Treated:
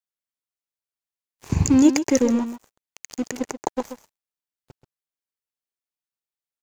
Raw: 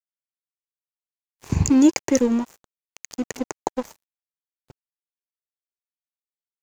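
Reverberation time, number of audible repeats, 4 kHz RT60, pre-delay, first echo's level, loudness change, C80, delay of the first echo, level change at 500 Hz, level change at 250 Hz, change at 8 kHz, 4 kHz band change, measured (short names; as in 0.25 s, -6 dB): none, 1, none, none, -10.5 dB, 0.0 dB, none, 0.132 s, +0.5 dB, +0.5 dB, +0.5 dB, +0.5 dB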